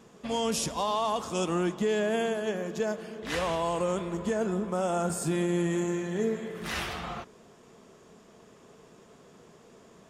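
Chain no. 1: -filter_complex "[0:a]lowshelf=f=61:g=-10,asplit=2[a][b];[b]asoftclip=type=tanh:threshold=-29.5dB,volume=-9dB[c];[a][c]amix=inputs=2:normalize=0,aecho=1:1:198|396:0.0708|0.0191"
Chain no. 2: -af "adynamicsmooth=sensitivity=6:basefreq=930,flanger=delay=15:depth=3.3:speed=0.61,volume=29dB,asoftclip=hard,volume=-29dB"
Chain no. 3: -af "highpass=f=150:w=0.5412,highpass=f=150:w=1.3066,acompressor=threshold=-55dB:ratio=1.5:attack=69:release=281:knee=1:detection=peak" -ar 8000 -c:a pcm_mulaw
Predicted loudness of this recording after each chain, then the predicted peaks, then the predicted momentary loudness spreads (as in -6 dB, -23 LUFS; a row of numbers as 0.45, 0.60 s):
-28.5, -35.0, -39.5 LUFS; -17.5, -29.0, -26.0 dBFS; 6, 7, 18 LU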